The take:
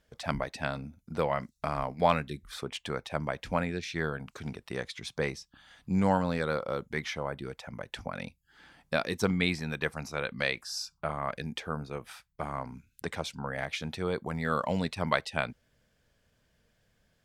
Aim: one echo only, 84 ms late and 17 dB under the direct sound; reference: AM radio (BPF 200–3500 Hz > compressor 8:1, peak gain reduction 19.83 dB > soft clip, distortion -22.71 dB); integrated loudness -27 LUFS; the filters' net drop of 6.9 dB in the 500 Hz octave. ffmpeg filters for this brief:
-af "highpass=200,lowpass=3.5k,equalizer=f=500:t=o:g=-8.5,aecho=1:1:84:0.141,acompressor=threshold=-42dB:ratio=8,asoftclip=threshold=-29dB,volume=21dB"

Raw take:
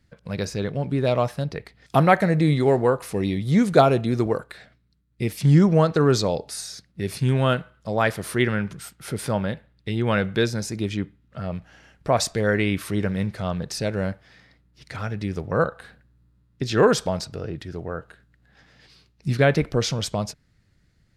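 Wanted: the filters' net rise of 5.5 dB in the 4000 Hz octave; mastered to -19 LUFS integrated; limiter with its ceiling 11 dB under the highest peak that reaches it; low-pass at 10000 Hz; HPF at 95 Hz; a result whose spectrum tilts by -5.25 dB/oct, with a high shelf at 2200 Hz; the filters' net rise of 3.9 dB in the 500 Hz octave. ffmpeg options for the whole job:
-af "highpass=95,lowpass=10k,equalizer=f=500:t=o:g=4.5,highshelf=f=2.2k:g=3,equalizer=f=4k:t=o:g=4,volume=4.5dB,alimiter=limit=-5.5dB:level=0:latency=1"

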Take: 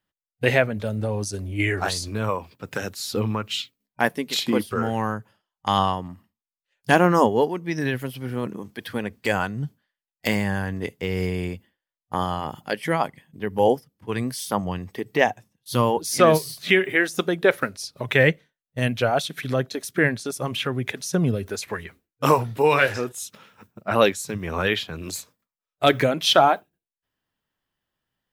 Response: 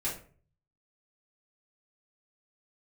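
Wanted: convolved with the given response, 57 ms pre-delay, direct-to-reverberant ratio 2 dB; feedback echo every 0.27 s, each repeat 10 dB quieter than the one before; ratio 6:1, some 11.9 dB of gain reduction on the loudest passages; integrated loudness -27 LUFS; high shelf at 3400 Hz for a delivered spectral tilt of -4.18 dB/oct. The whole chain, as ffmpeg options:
-filter_complex "[0:a]highshelf=f=3.4k:g=4,acompressor=threshold=-24dB:ratio=6,aecho=1:1:270|540|810|1080:0.316|0.101|0.0324|0.0104,asplit=2[a][b];[1:a]atrim=start_sample=2205,adelay=57[c];[b][c]afir=irnorm=-1:irlink=0,volume=-6.5dB[d];[a][d]amix=inputs=2:normalize=0,volume=0.5dB"

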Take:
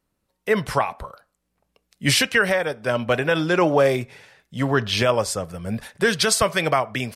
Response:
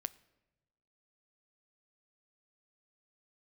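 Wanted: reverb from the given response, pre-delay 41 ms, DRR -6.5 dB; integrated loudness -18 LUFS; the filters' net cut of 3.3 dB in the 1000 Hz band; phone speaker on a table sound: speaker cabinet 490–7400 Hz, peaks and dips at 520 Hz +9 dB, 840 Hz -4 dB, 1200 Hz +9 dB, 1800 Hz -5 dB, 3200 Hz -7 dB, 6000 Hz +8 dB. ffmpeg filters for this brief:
-filter_complex "[0:a]equalizer=f=1k:t=o:g=-9,asplit=2[a][b];[1:a]atrim=start_sample=2205,adelay=41[c];[b][c]afir=irnorm=-1:irlink=0,volume=8.5dB[d];[a][d]amix=inputs=2:normalize=0,highpass=f=490:w=0.5412,highpass=f=490:w=1.3066,equalizer=f=520:t=q:w=4:g=9,equalizer=f=840:t=q:w=4:g=-4,equalizer=f=1.2k:t=q:w=4:g=9,equalizer=f=1.8k:t=q:w=4:g=-5,equalizer=f=3.2k:t=q:w=4:g=-7,equalizer=f=6k:t=q:w=4:g=8,lowpass=f=7.4k:w=0.5412,lowpass=f=7.4k:w=1.3066,volume=-3.5dB"

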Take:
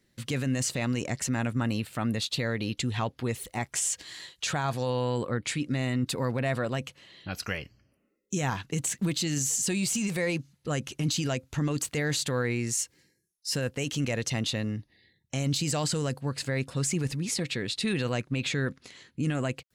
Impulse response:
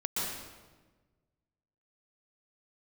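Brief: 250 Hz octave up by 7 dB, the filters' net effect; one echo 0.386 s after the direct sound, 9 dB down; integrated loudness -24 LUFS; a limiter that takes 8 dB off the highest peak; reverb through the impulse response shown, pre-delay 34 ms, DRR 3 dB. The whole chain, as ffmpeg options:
-filter_complex "[0:a]equalizer=f=250:t=o:g=8.5,alimiter=limit=-21dB:level=0:latency=1,aecho=1:1:386:0.355,asplit=2[a][b];[1:a]atrim=start_sample=2205,adelay=34[c];[b][c]afir=irnorm=-1:irlink=0,volume=-9.5dB[d];[a][d]amix=inputs=2:normalize=0,volume=4dB"

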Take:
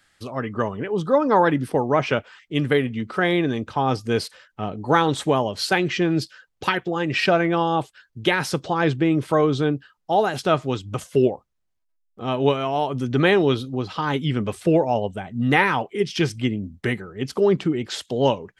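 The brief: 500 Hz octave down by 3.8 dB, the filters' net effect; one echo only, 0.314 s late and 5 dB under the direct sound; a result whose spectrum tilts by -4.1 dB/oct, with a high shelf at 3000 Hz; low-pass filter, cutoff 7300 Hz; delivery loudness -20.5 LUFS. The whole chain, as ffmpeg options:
-af "lowpass=7.3k,equalizer=f=500:t=o:g=-5,highshelf=f=3k:g=3,aecho=1:1:314:0.562,volume=2dB"

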